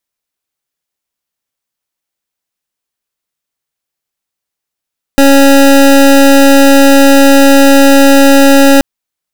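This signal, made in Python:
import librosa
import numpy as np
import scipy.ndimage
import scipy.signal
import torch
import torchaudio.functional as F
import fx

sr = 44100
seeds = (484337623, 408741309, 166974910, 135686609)

y = fx.pulse(sr, length_s=3.63, hz=276.0, level_db=-3.5, duty_pct=25)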